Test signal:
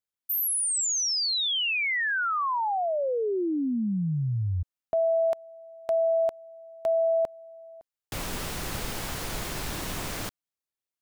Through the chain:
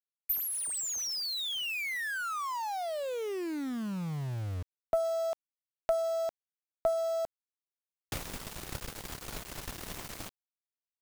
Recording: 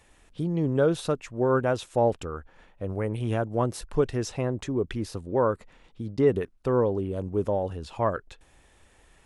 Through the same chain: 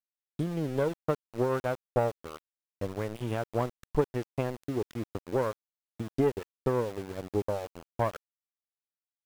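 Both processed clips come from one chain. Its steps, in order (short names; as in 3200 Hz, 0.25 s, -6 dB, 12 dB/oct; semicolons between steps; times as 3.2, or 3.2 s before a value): tube stage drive 16 dB, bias 0.5; transient shaper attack +8 dB, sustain -11 dB; sample gate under -33.5 dBFS; gain -5.5 dB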